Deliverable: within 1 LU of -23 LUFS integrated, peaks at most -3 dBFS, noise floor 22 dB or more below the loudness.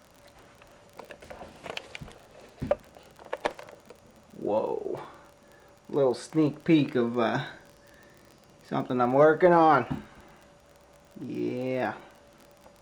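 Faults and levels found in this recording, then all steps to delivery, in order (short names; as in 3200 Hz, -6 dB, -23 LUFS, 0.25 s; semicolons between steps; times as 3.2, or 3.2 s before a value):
ticks 27/s; loudness -26.5 LUFS; peak -8.5 dBFS; loudness target -23.0 LUFS
-> de-click; gain +3.5 dB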